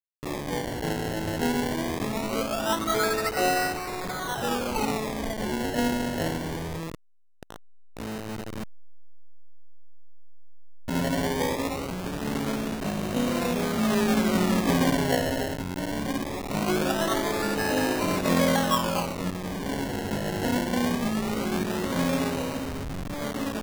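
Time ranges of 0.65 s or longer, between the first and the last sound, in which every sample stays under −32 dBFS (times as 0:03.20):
0:08.63–0:10.88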